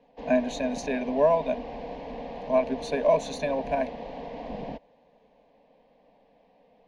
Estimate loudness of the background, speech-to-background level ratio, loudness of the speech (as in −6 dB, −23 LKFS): −38.0 LKFS, 11.0 dB, −27.0 LKFS